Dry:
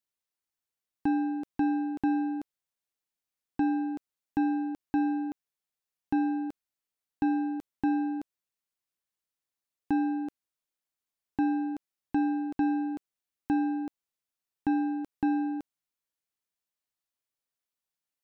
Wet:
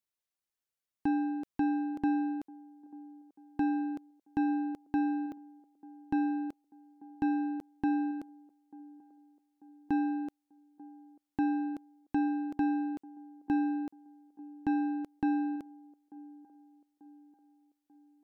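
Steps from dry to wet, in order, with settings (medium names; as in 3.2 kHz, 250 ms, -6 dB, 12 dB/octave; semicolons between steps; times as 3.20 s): feedback echo behind a band-pass 890 ms, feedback 48%, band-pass 470 Hz, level -20.5 dB; trim -2.5 dB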